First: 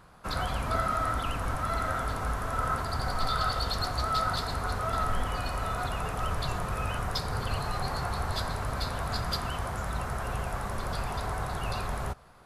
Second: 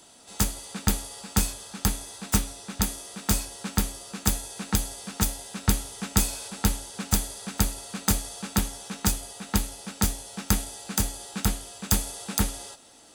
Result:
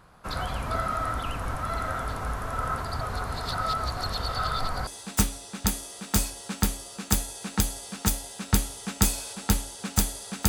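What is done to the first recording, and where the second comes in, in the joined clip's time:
first
3.01–4.87 s: reverse
4.87 s: go over to second from 2.02 s

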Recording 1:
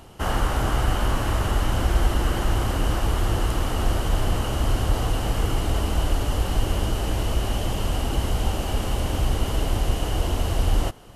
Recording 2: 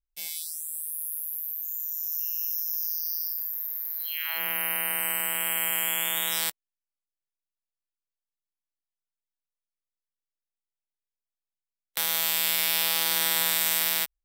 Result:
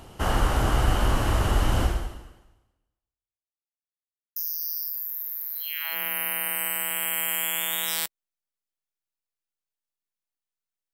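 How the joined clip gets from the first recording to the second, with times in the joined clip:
recording 1
1.83–3.58 s: fade out exponential
3.58–4.36 s: mute
4.36 s: go over to recording 2 from 2.80 s

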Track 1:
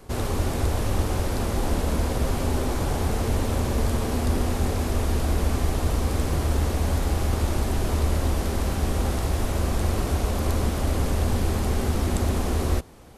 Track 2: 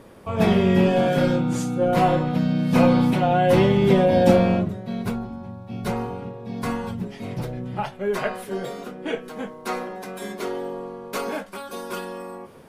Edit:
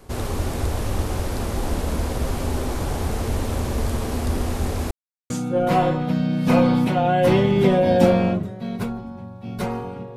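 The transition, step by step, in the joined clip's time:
track 1
4.91–5.30 s: mute
5.30 s: go over to track 2 from 1.56 s

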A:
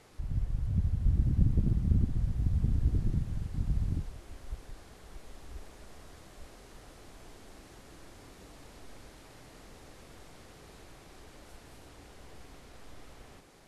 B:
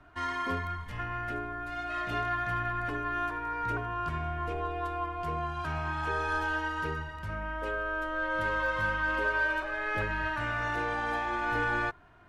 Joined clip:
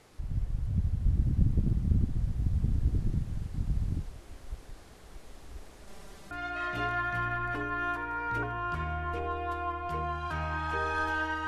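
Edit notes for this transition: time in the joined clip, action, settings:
A
5.87–6.31 s: comb 5.1 ms, depth 97%
6.31 s: go over to B from 1.65 s

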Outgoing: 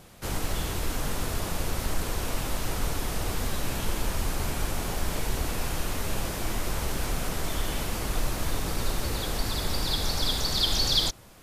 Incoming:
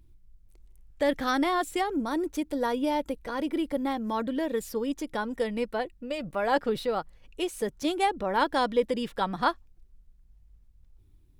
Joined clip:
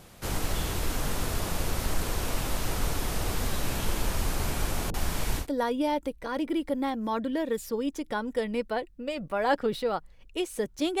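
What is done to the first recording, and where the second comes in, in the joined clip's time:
outgoing
4.90–5.47 s: bands offset in time lows, highs 40 ms, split 440 Hz
5.42 s: go over to incoming from 2.45 s, crossfade 0.10 s

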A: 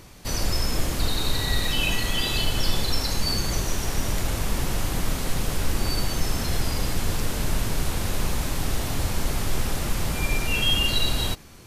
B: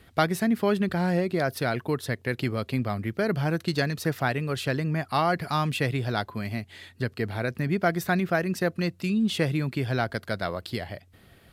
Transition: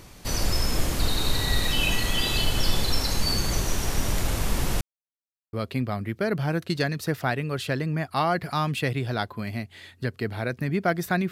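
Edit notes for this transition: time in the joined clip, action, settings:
A
4.81–5.53 s: mute
5.53 s: go over to B from 2.51 s

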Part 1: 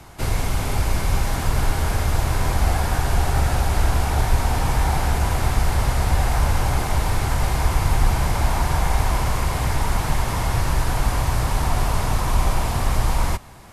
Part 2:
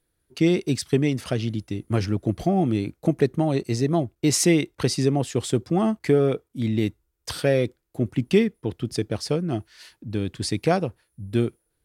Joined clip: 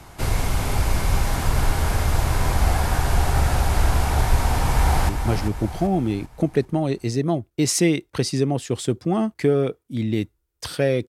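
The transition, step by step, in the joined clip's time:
part 1
4.36–5.09 s: echo throw 390 ms, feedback 45%, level -7.5 dB
5.09 s: go over to part 2 from 1.74 s

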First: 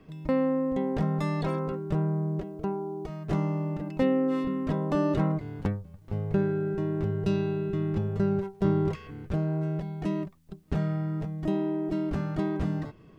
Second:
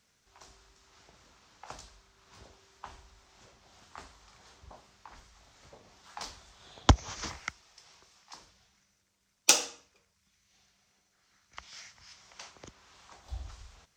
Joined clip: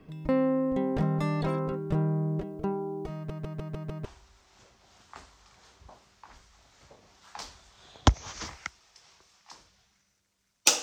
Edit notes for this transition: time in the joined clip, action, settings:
first
3.15 s: stutter in place 0.15 s, 6 plays
4.05 s: go over to second from 2.87 s

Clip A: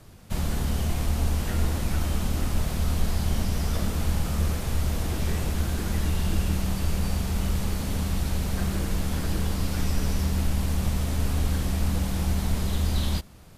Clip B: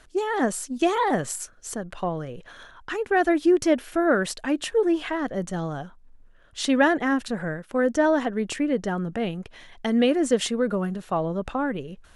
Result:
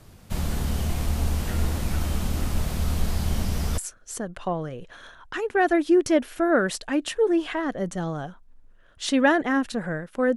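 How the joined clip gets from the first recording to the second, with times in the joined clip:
clip A
3.78 s: go over to clip B from 1.34 s

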